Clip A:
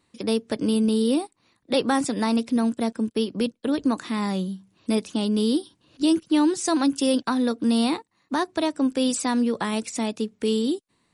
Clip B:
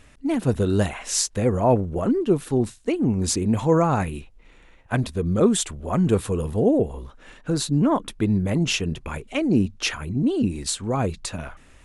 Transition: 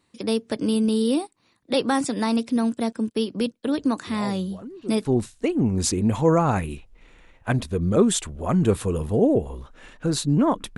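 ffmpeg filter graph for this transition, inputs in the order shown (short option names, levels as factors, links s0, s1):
-filter_complex "[1:a]asplit=2[s0][s1];[0:a]apad=whole_dur=10.77,atrim=end=10.77,atrim=end=5.052[s2];[s1]atrim=start=2.488:end=8.21[s3];[s0]atrim=start=1.51:end=2.49,asetpts=PTS-STARTPTS,volume=0.133,afade=t=in:d=0.004:c=hsin,afade=t=out:st=0.976:d=0.004:c=hsin,adelay=4070[s4];[s2][s3]acrossfade=d=0.004:c1=hsin:c2=hsin[s5];[s5][s4]amix=inputs=2:normalize=0"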